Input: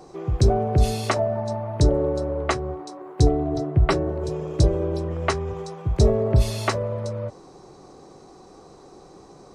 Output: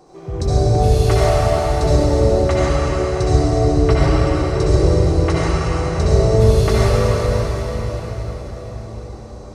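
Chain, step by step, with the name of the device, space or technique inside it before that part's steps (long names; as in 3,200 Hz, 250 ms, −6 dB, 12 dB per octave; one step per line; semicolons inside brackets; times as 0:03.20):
cathedral (convolution reverb RT60 5.5 s, pre-delay 58 ms, DRR −9.5 dB)
level −3.5 dB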